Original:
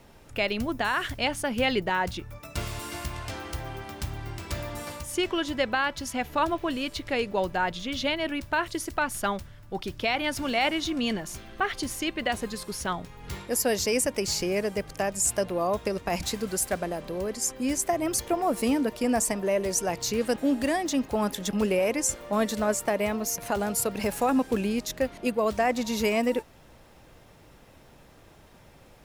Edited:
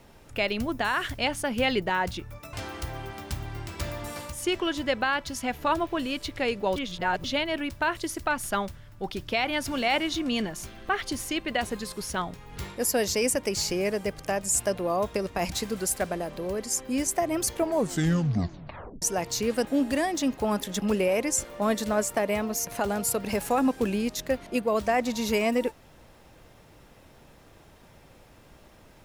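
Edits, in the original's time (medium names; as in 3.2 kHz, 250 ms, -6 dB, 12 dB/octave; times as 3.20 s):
2.53–3.24 s: delete
7.47–7.95 s: reverse
18.27 s: tape stop 1.46 s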